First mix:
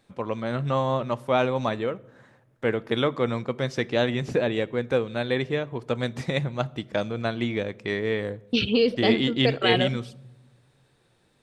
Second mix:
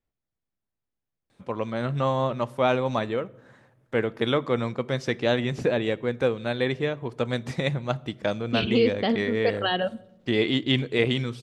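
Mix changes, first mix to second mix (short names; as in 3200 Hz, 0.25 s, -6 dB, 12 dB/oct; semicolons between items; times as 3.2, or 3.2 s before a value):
first voice: entry +1.30 s; second voice: add air absorption 170 m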